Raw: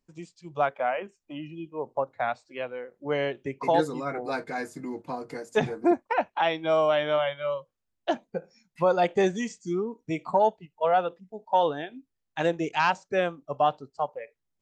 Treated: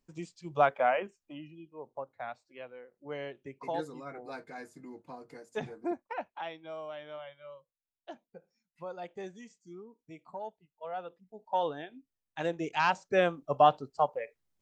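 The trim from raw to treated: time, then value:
0.96 s +0.5 dB
1.63 s -12 dB
6.24 s -12 dB
6.74 s -19 dB
10.75 s -19 dB
11.45 s -7.5 dB
12.45 s -7.5 dB
13.39 s +1.5 dB

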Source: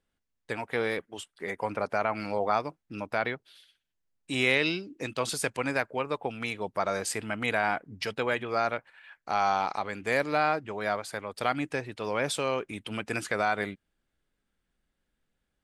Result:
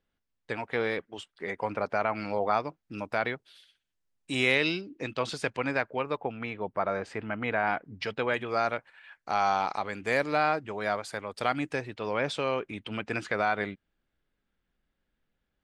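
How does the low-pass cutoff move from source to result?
5.2 kHz
from 2.83 s 10 kHz
from 4.81 s 4.4 kHz
from 6.17 s 2.1 kHz
from 7.67 s 4.1 kHz
from 8.34 s 9.3 kHz
from 11.91 s 4.3 kHz

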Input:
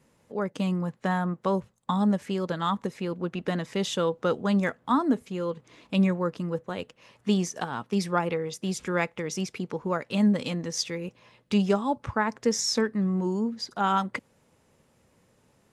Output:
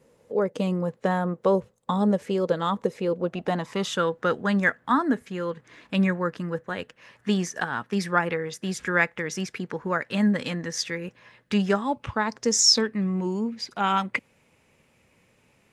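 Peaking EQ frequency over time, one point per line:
peaking EQ +12 dB 0.61 oct
3.13 s 480 Hz
4.08 s 1.7 kHz
11.78 s 1.7 kHz
12.59 s 7.7 kHz
12.93 s 2.4 kHz

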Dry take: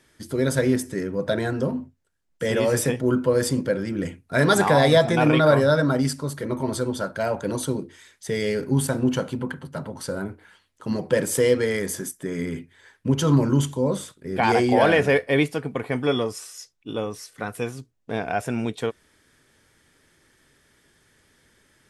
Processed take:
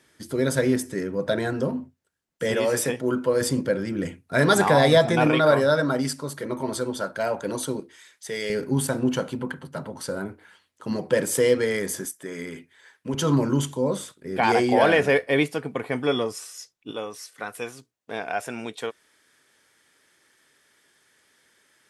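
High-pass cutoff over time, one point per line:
high-pass 6 dB/octave
130 Hz
from 2.54 s 320 Hz
from 3.41 s 94 Hz
from 5.27 s 270 Hz
from 7.80 s 670 Hz
from 8.50 s 160 Hz
from 12.05 s 560 Hz
from 13.14 s 190 Hz
from 16.91 s 630 Hz

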